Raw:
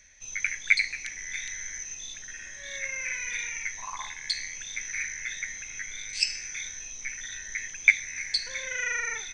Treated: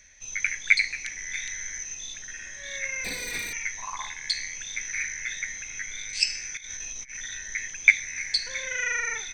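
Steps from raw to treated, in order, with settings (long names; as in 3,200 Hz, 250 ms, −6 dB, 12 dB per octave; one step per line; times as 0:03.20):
0:03.04–0:03.53: lower of the sound and its delayed copy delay 4.2 ms
0:06.57–0:07.17: compressor whose output falls as the input rises −40 dBFS, ratio −0.5
level +2 dB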